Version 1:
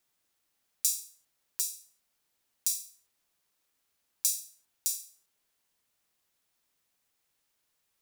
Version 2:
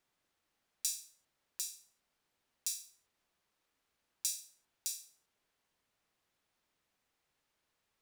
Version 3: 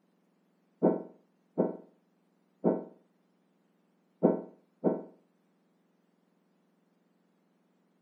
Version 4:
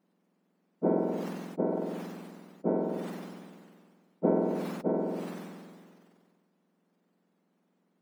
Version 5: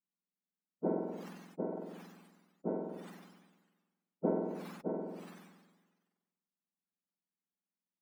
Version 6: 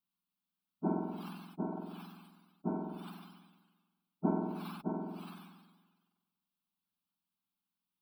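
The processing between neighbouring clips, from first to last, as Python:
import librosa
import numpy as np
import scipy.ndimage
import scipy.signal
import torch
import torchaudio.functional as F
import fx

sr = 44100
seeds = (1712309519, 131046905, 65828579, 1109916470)

y1 = fx.lowpass(x, sr, hz=2600.0, slope=6)
y1 = y1 * 10.0 ** (2.0 / 20.0)
y2 = fx.octave_mirror(y1, sr, pivot_hz=1900.0)
y2 = y2 * 10.0 ** (6.0 / 20.0)
y3 = fx.sustainer(y2, sr, db_per_s=29.0)
y3 = y3 * 10.0 ** (-3.0 / 20.0)
y4 = fx.bin_expand(y3, sr, power=1.5)
y4 = y4 * 10.0 ** (-5.0 / 20.0)
y5 = fx.fixed_phaser(y4, sr, hz=1900.0, stages=6)
y5 = y5 * 10.0 ** (6.0 / 20.0)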